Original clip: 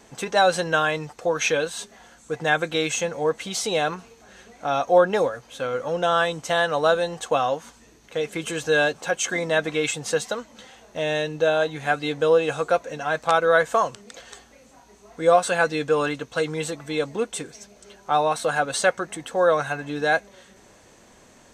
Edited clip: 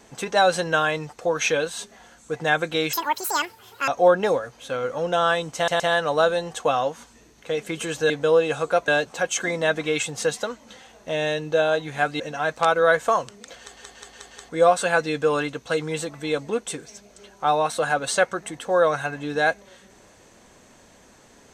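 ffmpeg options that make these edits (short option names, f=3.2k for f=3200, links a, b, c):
-filter_complex "[0:a]asplit=13[a][b][c][d][e][f][g][h][i][j][k][l][m];[a]atrim=end=2.934[n];[b]atrim=start=2.93:end=4.78,asetpts=PTS-STARTPTS,asetrate=85995,aresample=44100,atrim=end_sample=41838,asetpts=PTS-STARTPTS[o];[c]atrim=start=4.776:end=6.582[p];[d]atrim=start=6.458:end=6.582[q];[e]atrim=start=6.458:end=8.762[r];[f]atrim=start=12.078:end=12.862[s];[g]atrim=start=8.758:end=12.082[t];[h]atrim=start=12.858:end=14.432[u];[i]atrim=start=14.248:end=14.432[v];[j]atrim=start=14.248:end=14.432[w];[k]atrim=start=14.248:end=14.432[x];[l]atrim=start=14.248:end=14.432[y];[m]atrim=start=15.148[z];[n][o]acrossfade=d=0.004:c1=hsin:c2=hsin[aa];[aa][p]acrossfade=d=0.004:c1=hsin:c2=hsin[ab];[ab][q]acrossfade=d=0.004:c1=hsin:c2=hsin[ac];[ac][r]acrossfade=d=0.004:c1=hsin:c2=hsin[ad];[ad][s]acrossfade=d=0.004:c1=hsin:c2=hsin[ae];[ae][t]acrossfade=d=0.004:c1=hsin:c2=hsin[af];[af][u]acrossfade=d=0.004:c1=hsin:c2=hsin[ag];[ag][v]acrossfade=d=0.004:c1=hsin:c2=hsin[ah];[ah][w]acrossfade=d=0.004:c1=hsin:c2=hsin[ai];[ai][x]acrossfade=d=0.004:c1=hsin:c2=hsin[aj];[aj][y]acrossfade=d=0.004:c1=hsin:c2=hsin[ak];[ak][z]acrossfade=d=0.004:c1=hsin:c2=hsin"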